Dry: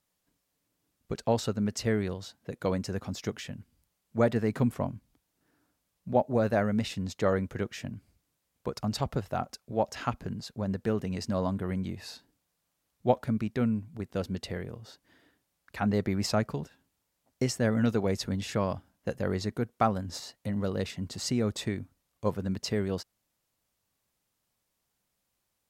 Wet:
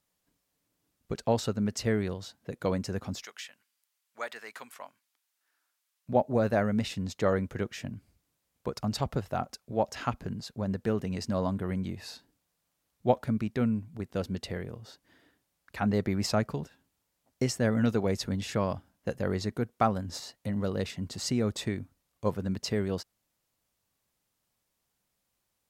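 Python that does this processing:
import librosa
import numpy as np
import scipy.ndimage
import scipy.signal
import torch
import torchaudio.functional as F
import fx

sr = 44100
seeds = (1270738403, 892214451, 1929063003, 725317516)

y = fx.highpass(x, sr, hz=1300.0, slope=12, at=(3.23, 6.09))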